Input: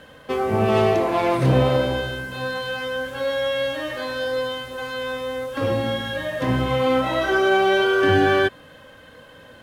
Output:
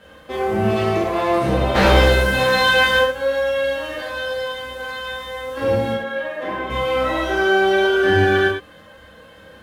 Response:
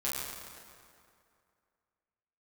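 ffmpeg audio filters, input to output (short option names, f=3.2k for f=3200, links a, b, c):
-filter_complex "[0:a]asplit=3[a][b][c];[a]afade=t=out:st=1.74:d=0.02[d];[b]aeval=exprs='0.376*sin(PI/2*3.16*val(0)/0.376)':c=same,afade=t=in:st=1.74:d=0.02,afade=t=out:st=2.99:d=0.02[e];[c]afade=t=in:st=2.99:d=0.02[f];[d][e][f]amix=inputs=3:normalize=0,asettb=1/sr,asplit=3[g][h][i];[g]atrim=end=5.924[j];[h]atrim=start=5.92:end=6.7,asetpts=PTS-STARTPTS,afade=t=in:d=0.004:c=qsin,afade=t=out:st=0.776:d=0.004:c=qsin,acrossover=split=250 3000:gain=0.0794 1 0.224[k][l][m];[k][l][m]amix=inputs=3:normalize=0[n];[i]atrim=start=6.696[o];[j][n]acrossfade=d=0.004:c1=hsin:c2=qsin[p];[p][o]acrossfade=d=0.004:c1=qsin:c2=hsin[q];[1:a]atrim=start_sample=2205,afade=t=out:st=0.17:d=0.01,atrim=end_sample=7938[r];[q][r]afir=irnorm=-1:irlink=0,volume=-2.5dB"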